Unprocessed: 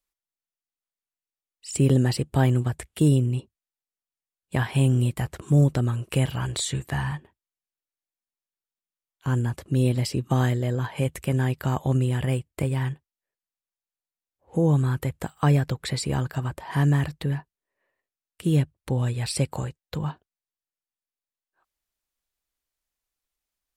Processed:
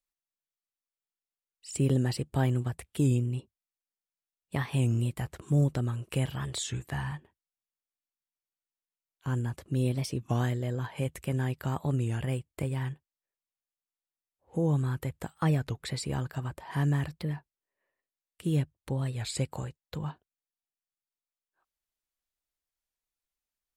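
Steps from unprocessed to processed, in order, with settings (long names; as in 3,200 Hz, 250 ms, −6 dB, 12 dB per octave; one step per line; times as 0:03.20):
wow of a warped record 33 1/3 rpm, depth 160 cents
level −6.5 dB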